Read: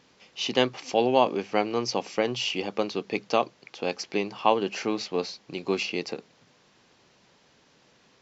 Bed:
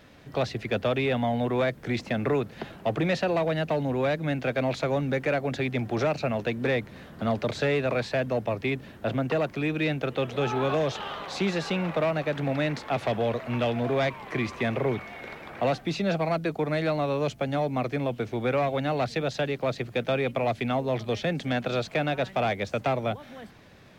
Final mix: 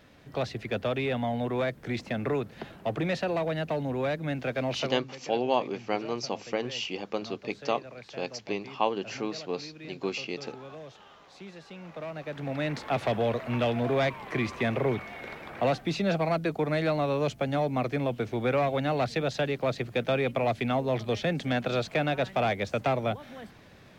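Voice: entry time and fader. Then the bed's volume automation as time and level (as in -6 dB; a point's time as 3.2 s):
4.35 s, -5.0 dB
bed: 4.83 s -3.5 dB
5.05 s -18.5 dB
11.65 s -18.5 dB
12.84 s -0.5 dB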